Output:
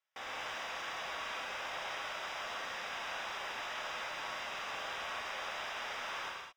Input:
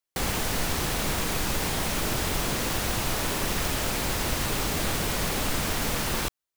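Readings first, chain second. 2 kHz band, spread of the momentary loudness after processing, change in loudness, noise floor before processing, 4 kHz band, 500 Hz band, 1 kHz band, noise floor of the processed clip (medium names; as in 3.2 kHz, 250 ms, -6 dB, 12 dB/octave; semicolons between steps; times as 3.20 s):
-7.5 dB, 1 LU, -12.5 dB, under -85 dBFS, -11.5 dB, -14.0 dB, -8.0 dB, -46 dBFS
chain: inverse Chebyshev high-pass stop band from 170 Hz, stop band 60 dB; treble shelf 6.1 kHz +11.5 dB; peak limiter -24 dBFS, peak gain reduction 12 dB; saturation -36 dBFS, distortion -9 dB; overdrive pedal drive 8 dB, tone 4.1 kHz, clips at -25 dBFS; Butterworth band-stop 4.3 kHz, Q 5.9; distance through air 220 m; gated-style reverb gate 250 ms flat, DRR -3 dB; trim +1 dB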